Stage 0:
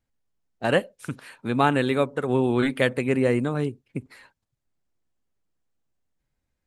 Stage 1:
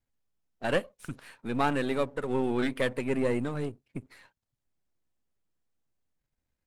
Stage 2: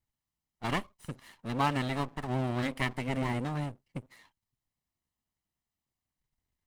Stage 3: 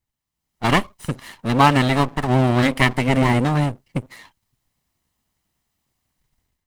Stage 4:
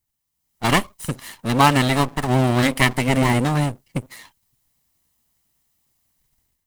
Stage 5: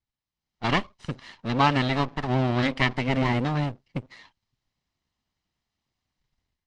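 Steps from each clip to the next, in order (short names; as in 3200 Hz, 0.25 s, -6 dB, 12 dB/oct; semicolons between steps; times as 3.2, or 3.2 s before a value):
half-wave gain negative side -7 dB; gain -3 dB
minimum comb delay 1 ms
AGC gain up to 11.5 dB; gain +3.5 dB
high shelf 6100 Hz +11.5 dB; gain -1 dB
LPF 5100 Hz 24 dB/oct; gain -6 dB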